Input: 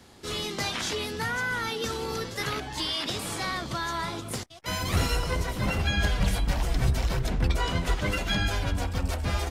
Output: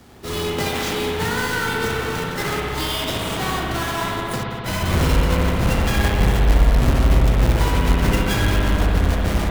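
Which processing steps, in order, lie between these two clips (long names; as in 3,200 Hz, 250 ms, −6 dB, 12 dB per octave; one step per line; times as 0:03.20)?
each half-wave held at its own peak
spring reverb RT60 3 s, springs 59 ms, chirp 65 ms, DRR −2 dB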